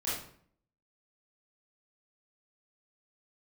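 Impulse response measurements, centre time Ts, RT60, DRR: 56 ms, 0.60 s, -10.5 dB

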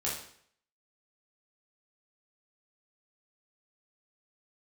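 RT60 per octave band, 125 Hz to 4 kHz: 0.65, 0.60, 0.60, 0.60, 0.60, 0.55 s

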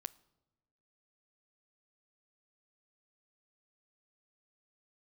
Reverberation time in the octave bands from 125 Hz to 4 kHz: 1.3, 1.3, 1.2, 1.0, 0.75, 0.70 s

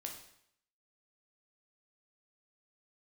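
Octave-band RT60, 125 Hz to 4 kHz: 0.70, 0.65, 0.70, 0.70, 0.70, 0.70 s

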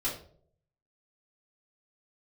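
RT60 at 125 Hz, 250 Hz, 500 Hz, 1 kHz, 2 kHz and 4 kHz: 0.90, 0.60, 0.70, 0.45, 0.35, 0.35 s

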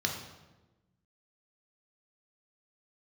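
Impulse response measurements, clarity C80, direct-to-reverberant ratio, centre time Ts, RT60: 8.0 dB, 1.5 dB, 32 ms, 1.1 s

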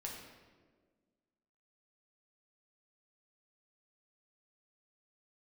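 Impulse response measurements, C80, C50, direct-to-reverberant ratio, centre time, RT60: 5.0 dB, 3.0 dB, -2.5 dB, 57 ms, 1.5 s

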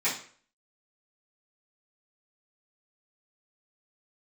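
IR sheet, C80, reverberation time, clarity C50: 12.0 dB, 0.50 s, 7.0 dB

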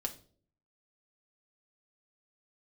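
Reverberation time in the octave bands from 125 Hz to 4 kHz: 0.75, 0.65, 0.60, 0.35, 0.35, 0.35 s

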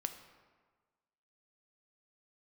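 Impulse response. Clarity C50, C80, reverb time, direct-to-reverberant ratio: 9.5 dB, 11.5 dB, 1.5 s, 7.0 dB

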